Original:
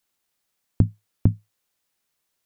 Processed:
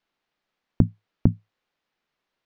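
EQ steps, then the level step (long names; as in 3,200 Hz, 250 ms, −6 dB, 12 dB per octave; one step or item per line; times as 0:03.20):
high-frequency loss of the air 240 metres
parametric band 85 Hz −9.5 dB 0.97 octaves
+4.0 dB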